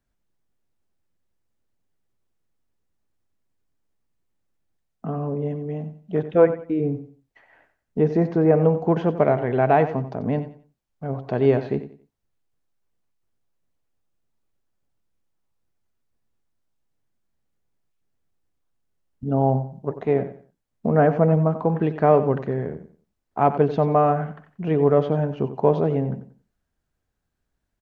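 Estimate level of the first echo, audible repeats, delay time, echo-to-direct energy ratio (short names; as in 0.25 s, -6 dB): -12.5 dB, 2, 91 ms, -12.0 dB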